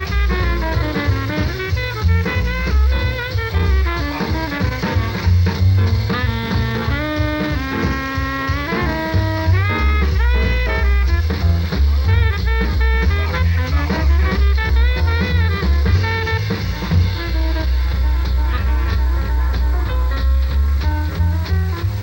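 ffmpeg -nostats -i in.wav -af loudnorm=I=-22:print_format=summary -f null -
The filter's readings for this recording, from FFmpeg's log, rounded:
Input Integrated:    -18.2 LUFS
Input True Peak:      -4.6 dBTP
Input LRA:             2.1 LU
Input Threshold:     -28.2 LUFS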